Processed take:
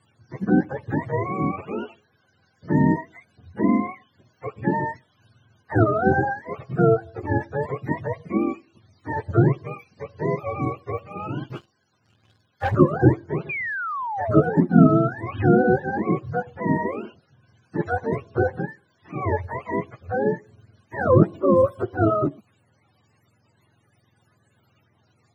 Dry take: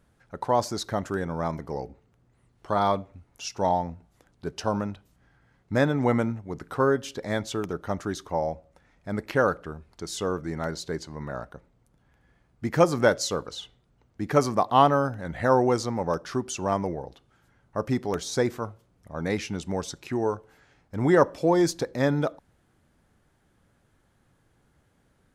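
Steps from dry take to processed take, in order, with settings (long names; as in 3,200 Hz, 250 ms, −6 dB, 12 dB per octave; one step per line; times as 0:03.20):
frequency axis turned over on the octave scale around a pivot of 430 Hz
0:11.50–0:12.75: leveller curve on the samples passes 2
0:13.49–0:14.67: sound drawn into the spectrogram fall 340–2,500 Hz −33 dBFS
level +5 dB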